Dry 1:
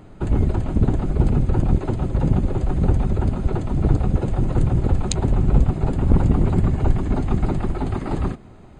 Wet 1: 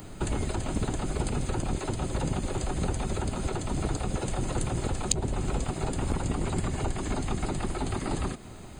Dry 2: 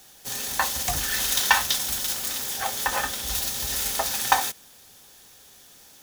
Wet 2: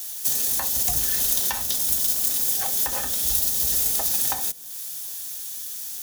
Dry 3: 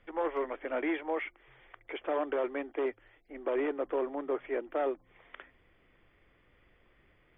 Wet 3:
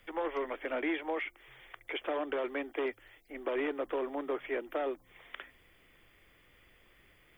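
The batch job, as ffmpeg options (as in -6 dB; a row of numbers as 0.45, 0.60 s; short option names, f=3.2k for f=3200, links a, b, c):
-filter_complex "[0:a]acrossover=split=290|690[a][b][c];[a]acompressor=threshold=-30dB:ratio=4[d];[b]acompressor=threshold=-36dB:ratio=4[e];[c]acompressor=threshold=-40dB:ratio=4[f];[d][e][f]amix=inputs=3:normalize=0,highshelf=f=2.6k:g=8,crystalizer=i=2:c=0"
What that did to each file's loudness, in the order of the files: -10.0, +3.0, -1.5 LU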